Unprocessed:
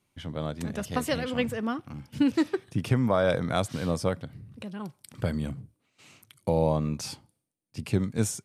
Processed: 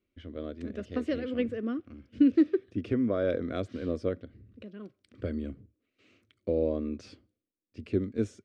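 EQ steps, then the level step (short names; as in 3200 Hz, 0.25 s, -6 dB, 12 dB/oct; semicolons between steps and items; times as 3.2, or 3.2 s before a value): dynamic EQ 310 Hz, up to +4 dB, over -34 dBFS, Q 1.1; tape spacing loss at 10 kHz 32 dB; fixed phaser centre 360 Hz, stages 4; 0.0 dB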